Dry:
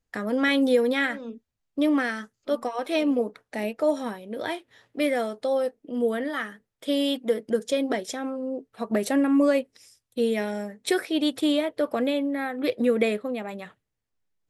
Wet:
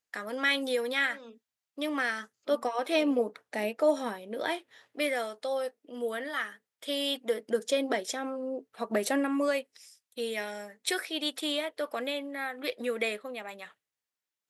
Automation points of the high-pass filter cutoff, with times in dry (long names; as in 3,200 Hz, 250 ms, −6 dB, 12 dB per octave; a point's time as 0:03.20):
high-pass filter 6 dB per octave
0:01.85 1,300 Hz
0:02.55 370 Hz
0:04.56 370 Hz
0:05.19 1,100 Hz
0:07.01 1,100 Hz
0:07.65 480 Hz
0:09.08 480 Hz
0:09.59 1,300 Hz